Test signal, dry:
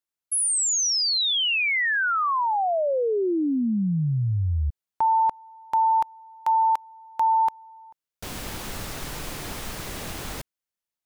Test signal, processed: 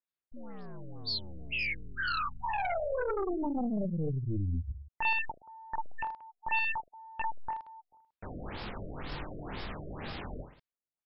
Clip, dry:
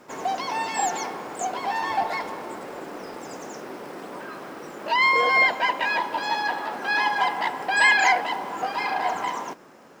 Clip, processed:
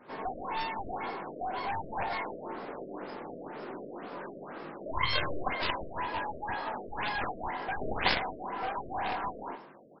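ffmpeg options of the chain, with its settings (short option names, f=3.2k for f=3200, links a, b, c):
-af "aecho=1:1:20|46|79.8|123.7|180.9:0.631|0.398|0.251|0.158|0.1,aeval=exprs='0.596*(cos(1*acos(clip(val(0)/0.596,-1,1)))-cos(1*PI/2))+0.15*(cos(3*acos(clip(val(0)/0.596,-1,1)))-cos(3*PI/2))+0.0841*(cos(7*acos(clip(val(0)/0.596,-1,1)))-cos(7*PI/2))+0.0211*(cos(8*acos(clip(val(0)/0.596,-1,1)))-cos(8*PI/2))':c=same,afftfilt=real='re*lt(b*sr/1024,660*pow(5500/660,0.5+0.5*sin(2*PI*2*pts/sr)))':imag='im*lt(b*sr/1024,660*pow(5500/660,0.5+0.5*sin(2*PI*2*pts/sr)))':win_size=1024:overlap=0.75,volume=-3.5dB"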